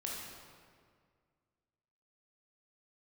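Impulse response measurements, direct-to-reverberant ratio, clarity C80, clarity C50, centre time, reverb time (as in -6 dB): -3.5 dB, 1.5 dB, -1.0 dB, 0.102 s, 1.9 s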